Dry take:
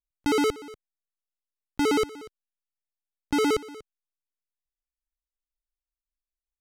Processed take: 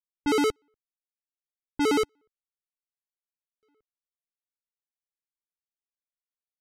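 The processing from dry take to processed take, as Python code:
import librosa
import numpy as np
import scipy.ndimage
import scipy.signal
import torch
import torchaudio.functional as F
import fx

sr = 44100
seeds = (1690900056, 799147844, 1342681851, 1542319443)

y = fx.env_lowpass(x, sr, base_hz=800.0, full_db=-21.0)
y = fx.buffer_glitch(y, sr, at_s=(3.28,), block=1024, repeats=14)
y = fx.upward_expand(y, sr, threshold_db=-41.0, expansion=2.5)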